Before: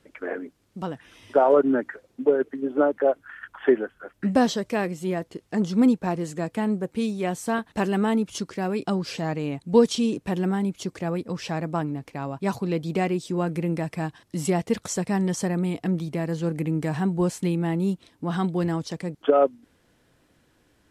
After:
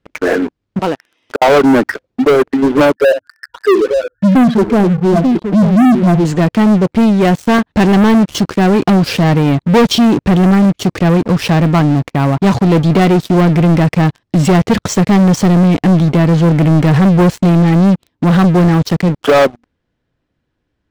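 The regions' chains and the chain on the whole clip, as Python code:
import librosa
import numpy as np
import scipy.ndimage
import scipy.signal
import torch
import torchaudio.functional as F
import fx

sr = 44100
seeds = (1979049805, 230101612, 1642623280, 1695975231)

y = fx.chain(x, sr, fx.highpass(hz=330.0, slope=12),
    fx.high_shelf(hz=9000.0, db=3.0),
    fx.gate_flip(shuts_db=-15.0, range_db=-40), at=(0.79, 1.42))
y = fx.chain(y, sr, fx.spec_expand(power=3.5),
    fx.lowpass(hz=1400.0, slope=12),
    fx.echo_multitap(ms=(63, 888), db=(-16.5, -11.0)), at=(2.95, 6.25))
y = scipy.signal.sosfilt(scipy.signal.butter(2, 4600.0, 'lowpass', fs=sr, output='sos'), y)
y = fx.low_shelf(y, sr, hz=180.0, db=8.0)
y = fx.leveller(y, sr, passes=5)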